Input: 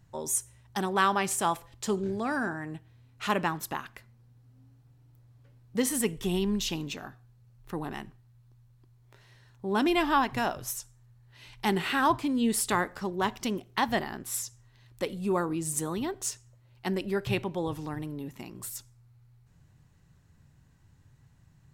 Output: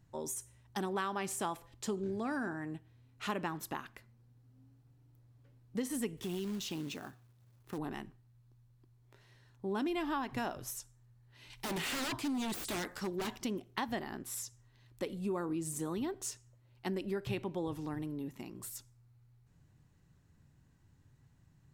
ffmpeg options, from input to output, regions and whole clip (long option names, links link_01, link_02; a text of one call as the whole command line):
ffmpeg -i in.wav -filter_complex "[0:a]asettb=1/sr,asplit=3[link_01][link_02][link_03];[link_01]atrim=end=6.174[link_04];[link_02]atrim=start=6.17:end=7.78,asetpts=PTS-STARTPTS,afade=type=in:duration=0.004:curve=qsin,afade=type=out:start_time=1.606:duration=0.004:curve=qsin,highpass=frequency=46:width=0.5412,highpass=frequency=46:width=1.3066,acompressor=threshold=-32dB:ratio=3:attack=3.2:release=140:knee=1:detection=peak,acrusher=bits=3:mode=log:mix=0:aa=0.000001[link_05];[link_03]atrim=start=7.776[link_06];[link_04][link_05]acrossfade=duration=0.004:curve1=hsin:curve2=qsin[link_07];[link_07][link_06]acrossfade=duration=0.004:curve1=qsin:curve2=hsin,asettb=1/sr,asplit=3[link_08][link_09][link_10];[link_08]atrim=end=11.504[link_11];[link_09]atrim=start=11.5:end=13.36,asetpts=PTS-STARTPTS,afade=type=in:duration=0.004:curve=qsin,afade=type=out:start_time=1.856:duration=0.004:curve=qsin,highshelf=frequency=2000:gain=9.5,aeval=exprs='0.0531*(abs(mod(val(0)/0.0531+3,4)-2)-1)':channel_layout=same[link_12];[link_10]atrim=start=13.356[link_13];[link_11][link_12]acrossfade=duration=0.004:curve1=hsin:curve2=qsin[link_14];[link_14][link_13]acrossfade=duration=0.004:curve1=qsin:curve2=hsin,deesser=0.5,equalizer=frequency=300:width_type=o:width=1.1:gain=4.5,acompressor=threshold=-26dB:ratio=6,volume=-6dB" out.wav